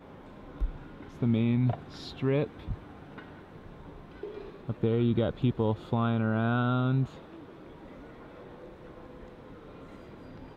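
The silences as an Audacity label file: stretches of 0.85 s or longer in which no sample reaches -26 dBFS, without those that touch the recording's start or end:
2.720000	4.690000	silence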